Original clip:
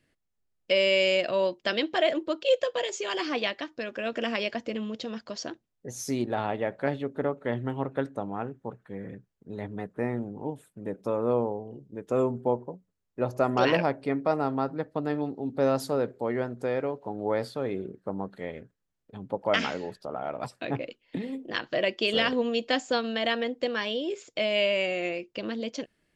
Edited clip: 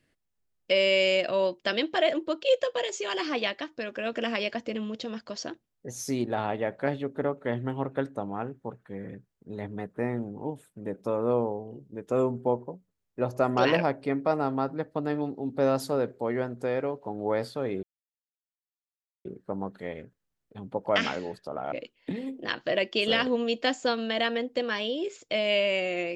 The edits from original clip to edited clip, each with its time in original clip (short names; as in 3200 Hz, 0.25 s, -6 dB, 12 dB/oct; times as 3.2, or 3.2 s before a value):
17.83 insert silence 1.42 s
20.3–20.78 cut